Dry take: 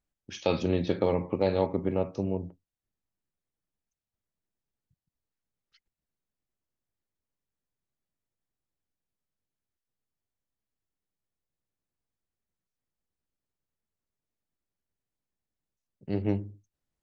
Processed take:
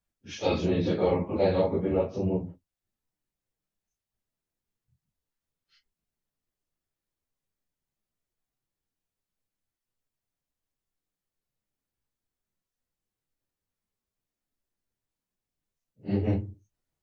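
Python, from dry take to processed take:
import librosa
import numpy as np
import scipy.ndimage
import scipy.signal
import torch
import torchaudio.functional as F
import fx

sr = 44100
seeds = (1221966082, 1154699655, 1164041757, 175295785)

y = fx.phase_scramble(x, sr, seeds[0], window_ms=100)
y = y * librosa.db_to_amplitude(1.5)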